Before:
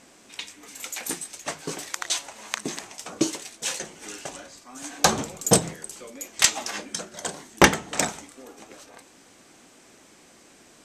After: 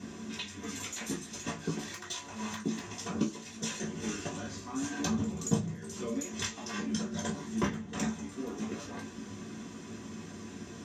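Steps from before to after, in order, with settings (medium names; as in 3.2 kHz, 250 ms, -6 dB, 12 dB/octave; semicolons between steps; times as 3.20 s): treble shelf 6.6 kHz -8.5 dB; compression 5:1, threshold -41 dBFS, peak gain reduction 27 dB; 1.12–2.90 s: overload inside the chain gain 33.5 dB; reverberation RT60 0.25 s, pre-delay 3 ms, DRR -6.5 dB; trim -6 dB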